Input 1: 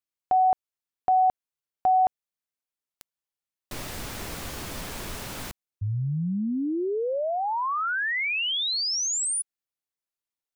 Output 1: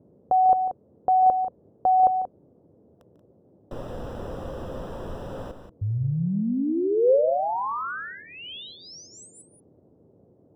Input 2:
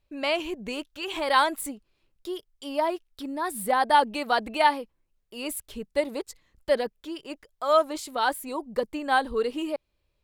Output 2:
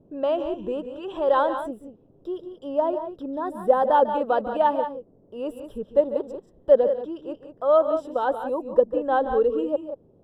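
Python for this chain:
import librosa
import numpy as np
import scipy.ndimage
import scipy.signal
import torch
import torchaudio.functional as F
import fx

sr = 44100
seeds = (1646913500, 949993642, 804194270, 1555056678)

y = scipy.signal.lfilter(np.full(20, 1.0 / 20), 1.0, x)
y = fx.peak_eq(y, sr, hz=520.0, db=10.0, octaves=0.39)
y = fx.echo_multitap(y, sr, ms=(146, 182), db=(-13.0, -10.0))
y = fx.dmg_noise_band(y, sr, seeds[0], low_hz=79.0, high_hz=520.0, level_db=-59.0)
y = y * 10.0 ** (1.5 / 20.0)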